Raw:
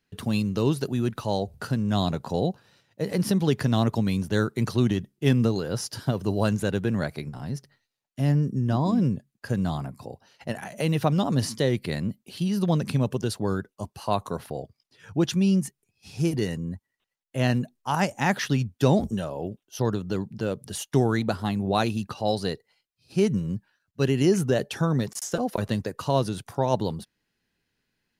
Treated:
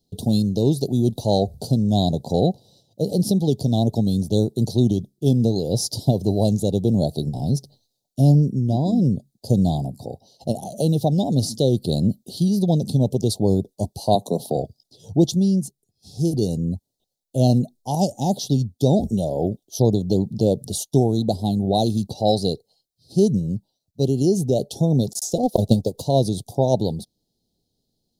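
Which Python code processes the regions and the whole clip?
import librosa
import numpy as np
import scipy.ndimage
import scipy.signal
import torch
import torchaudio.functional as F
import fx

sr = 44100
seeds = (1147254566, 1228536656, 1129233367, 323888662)

y = fx.chain(x, sr, fx.highpass(hz=150.0, slope=24),
    fx.band_squash(depth_pct=40), at=(14.15, 14.56))
y = fx.chain(y, sr, fx.transient(attack_db=9, sustain_db=-6),
    fx.power_curve(exponent=0.7),
    fx.upward_expand(threshold_db=-35.0, expansion=1.5), at=(25.43, 26.05))
y = fx.rider(y, sr, range_db=5, speed_s=0.5)
y = scipy.signal.sosfilt(scipy.signal.ellip(3, 1.0, 40, [740.0, 3800.0], 'bandstop', fs=sr, output='sos'), y)
y = y * 10.0 ** (6.0 / 20.0)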